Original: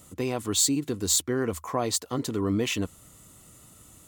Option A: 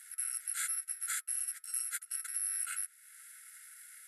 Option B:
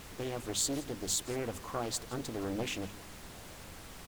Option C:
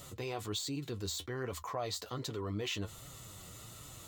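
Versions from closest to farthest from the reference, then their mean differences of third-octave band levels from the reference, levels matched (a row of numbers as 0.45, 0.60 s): C, B, A; 7.5, 10.0, 20.5 dB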